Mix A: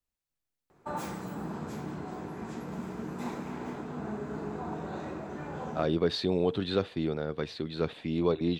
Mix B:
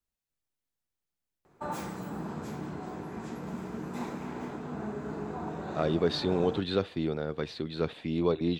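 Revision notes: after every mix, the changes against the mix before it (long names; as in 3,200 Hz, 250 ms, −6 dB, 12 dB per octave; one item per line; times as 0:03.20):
background: entry +0.75 s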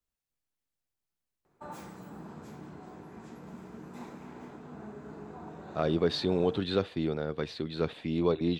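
background −8.0 dB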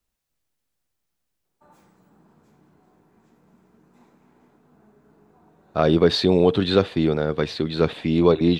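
speech +10.5 dB
background −12.0 dB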